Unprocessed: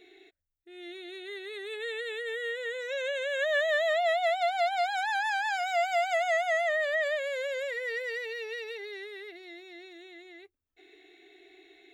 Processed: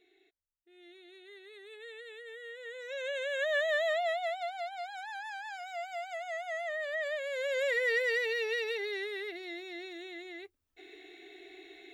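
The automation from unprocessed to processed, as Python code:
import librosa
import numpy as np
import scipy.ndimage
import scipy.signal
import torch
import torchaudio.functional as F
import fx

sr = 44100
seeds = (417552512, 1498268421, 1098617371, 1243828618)

y = fx.gain(x, sr, db=fx.line((2.48, -12.0), (3.17, -3.0), (3.87, -3.0), (4.71, -12.0), (6.23, -12.0), (7.28, -4.0), (7.71, 4.5)))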